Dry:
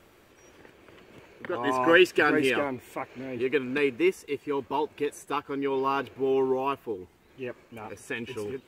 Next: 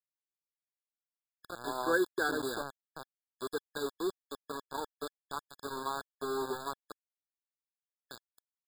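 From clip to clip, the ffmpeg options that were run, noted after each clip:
-af "aeval=exprs='val(0)*gte(abs(val(0)),0.0596)':c=same,lowshelf=f=460:g=-5.5,afftfilt=real='re*eq(mod(floor(b*sr/1024/1700),2),0)':imag='im*eq(mod(floor(b*sr/1024/1700),2),0)':win_size=1024:overlap=0.75,volume=-6.5dB"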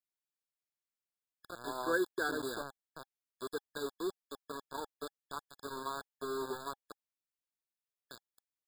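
-af "bandreject=f=810:w=12,volume=-3dB"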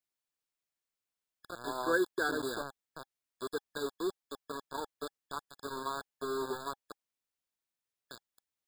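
-af "equalizer=f=15k:t=o:w=0.71:g=-3,volume=2.5dB"

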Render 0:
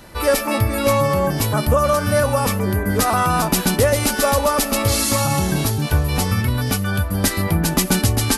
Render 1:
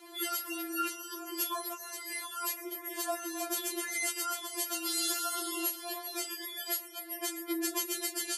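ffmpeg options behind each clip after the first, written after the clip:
-af "highpass=f=290:w=0.5412,highpass=f=290:w=1.3066,alimiter=limit=-13dB:level=0:latency=1:release=364,afftfilt=real='re*4*eq(mod(b,16),0)':imag='im*4*eq(mod(b,16),0)':win_size=2048:overlap=0.75,volume=-4dB"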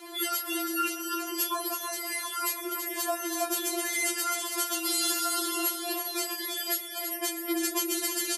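-filter_complex "[0:a]asplit=2[a][b];[b]acompressor=threshold=-41dB:ratio=6,volume=-1.5dB[c];[a][c]amix=inputs=2:normalize=0,aecho=1:1:328:0.473,volume=2dB"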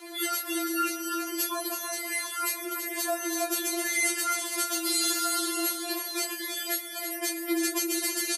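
-filter_complex "[0:a]highpass=250,asplit=2[a][b];[b]adelay=15,volume=-5dB[c];[a][c]amix=inputs=2:normalize=0"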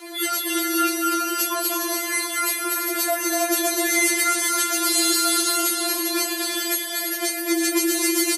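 -af "aecho=1:1:240|408|525.6|607.9|665.5:0.631|0.398|0.251|0.158|0.1,volume=5.5dB"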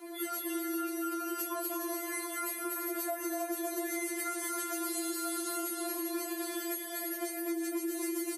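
-af "equalizer=f=4.1k:t=o:w=2.7:g=-13.5,acompressor=threshold=-27dB:ratio=6,volume=-5dB"

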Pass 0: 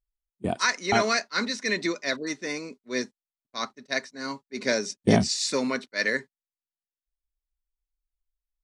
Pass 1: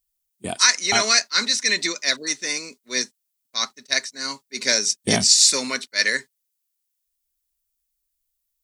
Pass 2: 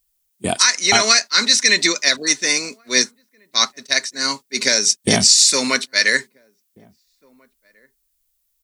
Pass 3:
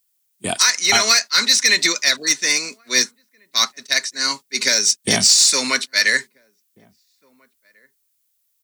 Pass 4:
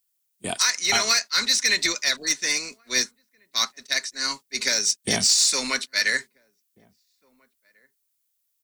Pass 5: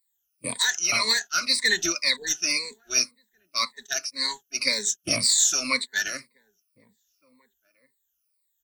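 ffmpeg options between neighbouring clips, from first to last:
-af "crystalizer=i=9.5:c=0,volume=-4dB"
-filter_complex "[0:a]alimiter=limit=-9.5dB:level=0:latency=1:release=220,asplit=2[a][b];[b]adelay=1691,volume=-30dB,highshelf=f=4k:g=-38[c];[a][c]amix=inputs=2:normalize=0,volume=8dB"
-filter_complex "[0:a]highpass=63,acrossover=split=550|940[a][b][c];[c]acontrast=43[d];[a][b][d]amix=inputs=3:normalize=0,volume=-4.5dB"
-af "tremolo=f=280:d=0.333,volume=-4.5dB"
-af "afftfilt=real='re*pow(10,22/40*sin(2*PI*(0.97*log(max(b,1)*sr/1024/100)/log(2)-(-1.9)*(pts-256)/sr)))':imag='im*pow(10,22/40*sin(2*PI*(0.97*log(max(b,1)*sr/1024/100)/log(2)-(-1.9)*(pts-256)/sr)))':win_size=1024:overlap=0.75,volume=-6.5dB"

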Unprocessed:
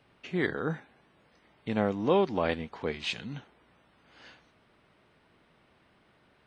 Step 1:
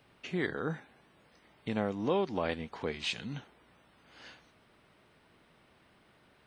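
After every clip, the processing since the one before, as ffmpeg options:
-af "highshelf=f=6.8k:g=8,acompressor=threshold=-35dB:ratio=1.5"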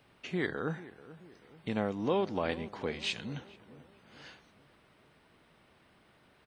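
-filter_complex "[0:a]asplit=2[a][b];[b]adelay=436,lowpass=f=1.1k:p=1,volume=-16dB,asplit=2[c][d];[d]adelay=436,lowpass=f=1.1k:p=1,volume=0.51,asplit=2[e][f];[f]adelay=436,lowpass=f=1.1k:p=1,volume=0.51,asplit=2[g][h];[h]adelay=436,lowpass=f=1.1k:p=1,volume=0.51,asplit=2[i][j];[j]adelay=436,lowpass=f=1.1k:p=1,volume=0.51[k];[a][c][e][g][i][k]amix=inputs=6:normalize=0"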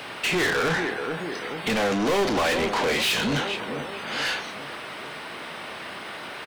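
-filter_complex "[0:a]asplit=2[a][b];[b]highpass=f=720:p=1,volume=37dB,asoftclip=type=tanh:threshold=-16.5dB[c];[a][c]amix=inputs=2:normalize=0,lowpass=f=7.5k:p=1,volume=-6dB,asplit=2[d][e];[e]adelay=35,volume=-10.5dB[f];[d][f]amix=inputs=2:normalize=0"

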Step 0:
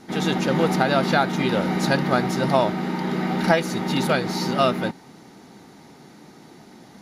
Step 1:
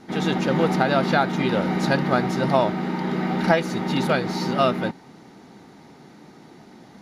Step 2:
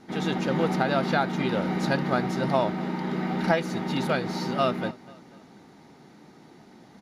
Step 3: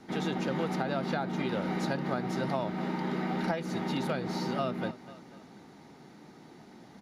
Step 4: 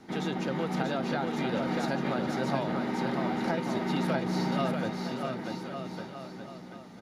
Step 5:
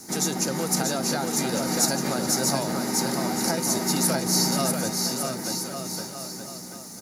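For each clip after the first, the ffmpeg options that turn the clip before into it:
-af "highshelf=f=6.1k:g=-9"
-af "aecho=1:1:245|490|735:0.0794|0.0381|0.0183,volume=-4.5dB"
-filter_complex "[0:a]acrossover=split=260|910[a][b][c];[a]acompressor=threshold=-34dB:ratio=4[d];[b]acompressor=threshold=-32dB:ratio=4[e];[c]acompressor=threshold=-38dB:ratio=4[f];[d][e][f]amix=inputs=3:normalize=0,volume=-1dB"
-af "aecho=1:1:640|1152|1562|1889|2151:0.631|0.398|0.251|0.158|0.1"
-af "aexciter=amount=13.1:drive=8:freq=5.1k,volume=3dB"

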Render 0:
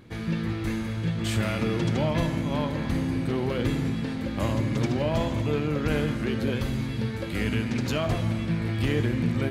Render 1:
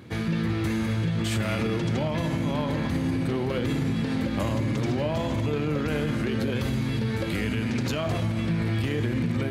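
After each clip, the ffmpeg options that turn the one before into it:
-af "highpass=f=61:w=0.5412,highpass=f=61:w=1.3066,alimiter=limit=-23.5dB:level=0:latency=1:release=52,volume=5dB"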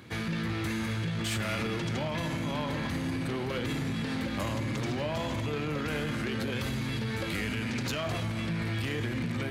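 -filter_complex "[0:a]acrossover=split=880[a][b];[b]acontrast=55[c];[a][c]amix=inputs=2:normalize=0,asoftclip=type=tanh:threshold=-19.5dB,volume=-5dB"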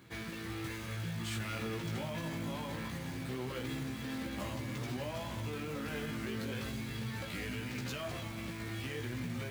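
-af "acrusher=bits=3:mode=log:mix=0:aa=0.000001,flanger=delay=15:depth=3.2:speed=0.24,volume=-5dB"

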